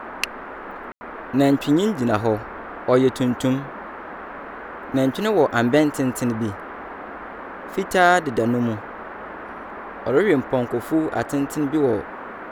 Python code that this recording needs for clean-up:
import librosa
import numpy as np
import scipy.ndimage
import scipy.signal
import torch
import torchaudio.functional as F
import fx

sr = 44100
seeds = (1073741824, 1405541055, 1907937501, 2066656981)

y = fx.fix_declip(x, sr, threshold_db=-5.5)
y = fx.fix_ambience(y, sr, seeds[0], print_start_s=7.13, print_end_s=7.63, start_s=0.92, end_s=1.01)
y = fx.noise_reduce(y, sr, print_start_s=7.13, print_end_s=7.63, reduce_db=30.0)